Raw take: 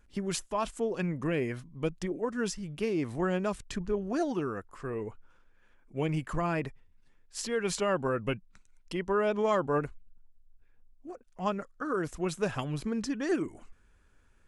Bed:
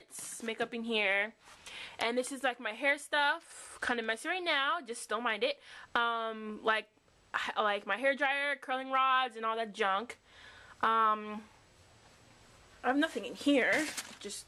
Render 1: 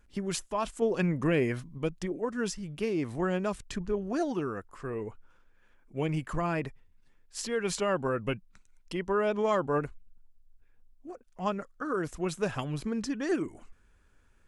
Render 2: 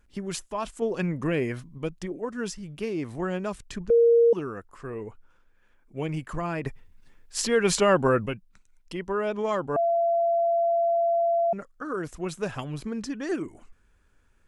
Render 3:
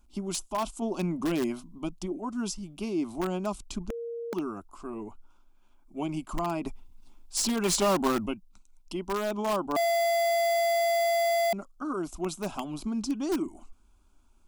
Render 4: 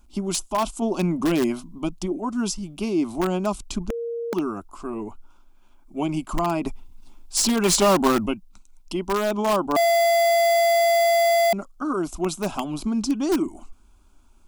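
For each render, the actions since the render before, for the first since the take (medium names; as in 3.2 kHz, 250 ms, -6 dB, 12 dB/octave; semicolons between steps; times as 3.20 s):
0.82–1.78 s: gain +4 dB
3.90–4.33 s: bleep 467 Hz -14.5 dBFS; 6.66–8.26 s: gain +8.5 dB; 9.76–11.53 s: bleep 679 Hz -20 dBFS
static phaser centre 480 Hz, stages 6; in parallel at -7 dB: integer overflow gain 24 dB
trim +7 dB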